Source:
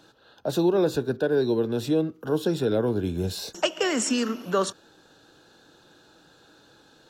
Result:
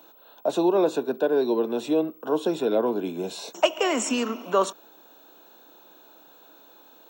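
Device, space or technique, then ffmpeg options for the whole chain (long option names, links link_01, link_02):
old television with a line whistle: -af "highpass=frequency=220:width=0.5412,highpass=frequency=220:width=1.3066,equalizer=frequency=670:width_type=q:width=4:gain=7,equalizer=frequency=1000:width_type=q:width=4:gain=8,equalizer=frequency=1700:width_type=q:width=4:gain=-6,equalizer=frequency=2400:width_type=q:width=4:gain=5,equalizer=frequency=4800:width_type=q:width=4:gain=-9,lowpass=frequency=8900:width=0.5412,lowpass=frequency=8900:width=1.3066,aeval=exprs='val(0)+0.00251*sin(2*PI*15734*n/s)':channel_layout=same"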